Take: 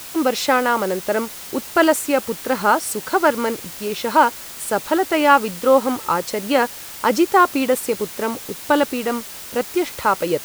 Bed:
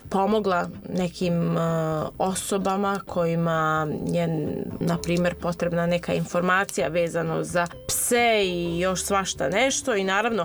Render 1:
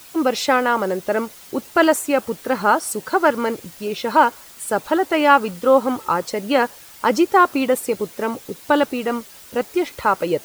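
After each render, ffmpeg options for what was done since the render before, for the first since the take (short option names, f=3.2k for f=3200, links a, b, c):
-af "afftdn=nr=9:nf=-35"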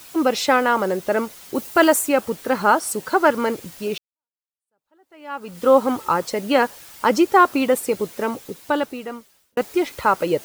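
-filter_complex "[0:a]asettb=1/sr,asplit=3[a][b][c];[a]atrim=end=1.554[d];[b]atrim=start=1.55:end=2.09,asetpts=PTS-STARTPTS,afade=t=in:d=0.004:c=qsin,afade=t=out:st=0.536:d=0.004:c=qsin,highshelf=f=8.3k:g=7.5[e];[c]atrim=start=2.086[f];[d][e]acrossfade=d=0.004:c1=hsin:c2=qsin[g];[g][f]acrossfade=d=0.004:c1=qsin:c2=hsin,asplit=3[h][i][j];[h]atrim=end=3.98,asetpts=PTS-STARTPTS,afade=t=out:st=3.976:d=0.004:c=hsin[k];[i]atrim=start=3.98:end=9.57,asetpts=PTS-STARTPTS,afade=t=in:d=1.65:c=exp,afade=t=out:st=4.19:d=1.4[l];[j]atrim=start=9.57,asetpts=PTS-STARTPTS,afade=t=in:d=0.004:c=hsin[m];[k][l][m]concat=n=3:v=0:a=1"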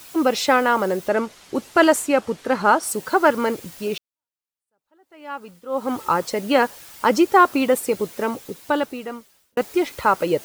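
-filter_complex "[0:a]asettb=1/sr,asplit=3[a][b][c];[a]atrim=end=1.084[d];[b]atrim=start=1.08:end=2.83,asetpts=PTS-STARTPTS,afade=t=in:d=0.004:c=qsin,afade=t=out:st=1.746:d=0.004:c=qsin,adynamicsmooth=sensitivity=7.5:basefreq=6.8k[e];[c]atrim=start=2.826[f];[d][e]acrossfade=d=0.004:c1=hsin:c2=qsin[g];[g][f]acrossfade=d=0.004:c1=qsin:c2=hsin,asplit=3[h][i][j];[h]atrim=end=5.62,asetpts=PTS-STARTPTS,afade=t=out:st=5.29:d=0.33:silence=0.112202[k];[i]atrim=start=5.62:end=5.68,asetpts=PTS-STARTPTS,volume=-19dB[l];[j]atrim=start=5.68,asetpts=PTS-STARTPTS,afade=t=in:d=0.33:silence=0.112202[m];[k][l][m]concat=n=3:v=0:a=1"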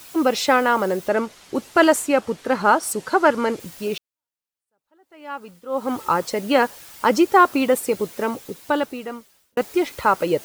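-filter_complex "[0:a]asettb=1/sr,asplit=3[a][b][c];[a]atrim=end=2.934[d];[b]atrim=start=2.93:end=3.6,asetpts=PTS-STARTPTS,afade=t=in:d=0.004:c=qsin,afade=t=out:st=0.666:d=0.004:c=qsin,lowpass=9.1k[e];[c]atrim=start=3.596[f];[d][e]acrossfade=d=0.004:c1=hsin:c2=qsin[g];[g][f]acrossfade=d=0.004:c1=qsin:c2=hsin"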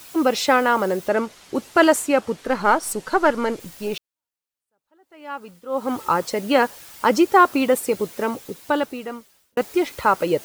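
-filter_complex "[0:a]asettb=1/sr,asplit=3[a][b][c];[a]atrim=end=2.464[d];[b]atrim=start=2.46:end=3.94,asetpts=PTS-STARTPTS,afade=t=in:d=0.004:c=qsin,afade=t=out:st=1.476:d=0.004:c=qsin,aeval=exprs='if(lt(val(0),0),0.708*val(0),val(0))':c=same[e];[c]atrim=start=3.936[f];[d][e]acrossfade=d=0.004:c1=hsin:c2=qsin[g];[g][f]acrossfade=d=0.004:c1=qsin:c2=hsin"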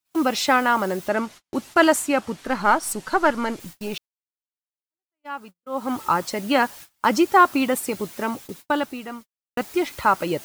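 -af "agate=range=-42dB:threshold=-38dB:ratio=16:detection=peak,equalizer=f=470:w=2.8:g=-8"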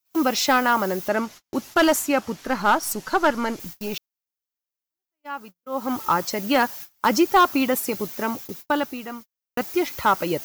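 -af "aexciter=amount=1.4:drive=4:freq=5.1k,volume=10.5dB,asoftclip=hard,volume=-10.5dB"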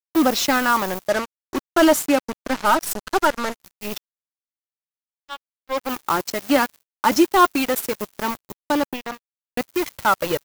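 -af "aphaser=in_gain=1:out_gain=1:delay=3.5:decay=0.41:speed=0.22:type=sinusoidal,acrusher=bits=3:mix=0:aa=0.5"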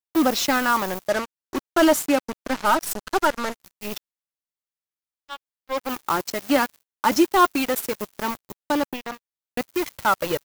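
-af "volume=-2dB"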